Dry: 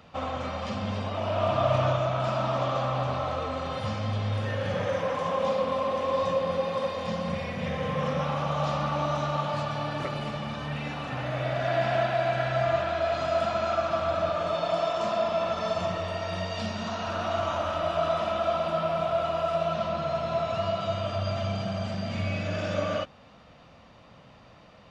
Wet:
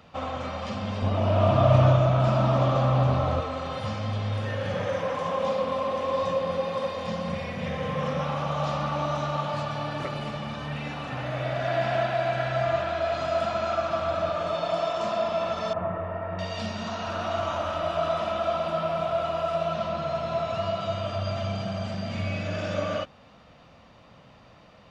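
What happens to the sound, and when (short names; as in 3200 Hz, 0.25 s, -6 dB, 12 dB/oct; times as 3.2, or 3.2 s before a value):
1.02–3.41 low shelf 420 Hz +10.5 dB
15.73–16.39 LPF 1800 Hz 24 dB/oct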